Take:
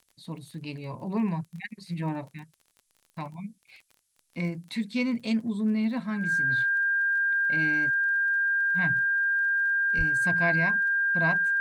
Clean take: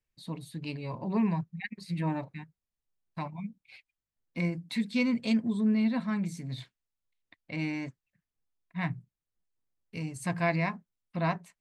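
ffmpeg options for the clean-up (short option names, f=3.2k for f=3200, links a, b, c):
-filter_complex "[0:a]adeclick=t=4,bandreject=f=1.6k:w=30,asplit=3[a][b][c];[a]afade=t=out:st=9.97:d=0.02[d];[b]highpass=f=140:w=0.5412,highpass=f=140:w=1.3066,afade=t=in:st=9.97:d=0.02,afade=t=out:st=10.09:d=0.02[e];[c]afade=t=in:st=10.09:d=0.02[f];[d][e][f]amix=inputs=3:normalize=0,agate=range=-21dB:threshold=-60dB"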